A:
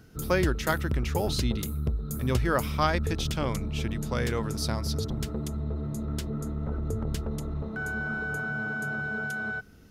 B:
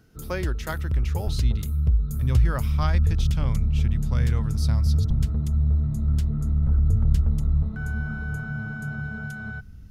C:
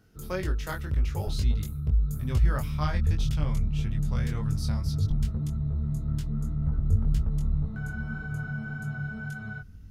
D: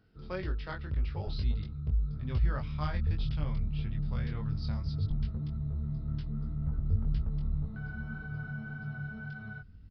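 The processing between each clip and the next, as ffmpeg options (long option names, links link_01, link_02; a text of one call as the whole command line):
ffmpeg -i in.wav -af "asubboost=boost=11:cutoff=120,volume=-4.5dB" out.wav
ffmpeg -i in.wav -af "flanger=delay=19.5:depth=2.8:speed=1.8" out.wav
ffmpeg -i in.wav -af "aresample=11025,aresample=44100,volume=-5.5dB" out.wav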